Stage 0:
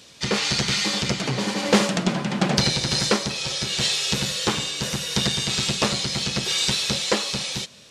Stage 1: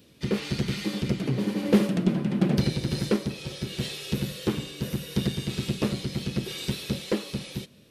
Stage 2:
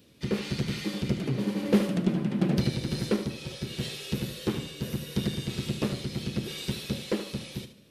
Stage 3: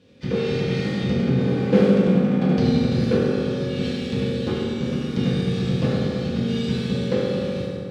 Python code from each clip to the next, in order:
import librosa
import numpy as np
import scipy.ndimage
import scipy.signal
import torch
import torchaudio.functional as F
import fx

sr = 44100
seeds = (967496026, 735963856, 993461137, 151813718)

y1 = fx.curve_eq(x, sr, hz=(190.0, 330.0, 820.0, 2700.0, 7100.0, 13000.0), db=(0, 2, -13, -11, -19, 1))
y2 = fx.echo_feedback(y1, sr, ms=74, feedback_pct=30, wet_db=-11.0)
y2 = y2 * librosa.db_to_amplitude(-2.5)
y3 = np.repeat(scipy.signal.resample_poly(y2, 1, 2), 2)[:len(y2)]
y3 = fx.air_absorb(y3, sr, metres=95.0)
y3 = fx.rev_fdn(y3, sr, rt60_s=2.7, lf_ratio=1.35, hf_ratio=0.5, size_ms=12.0, drr_db=-7.5)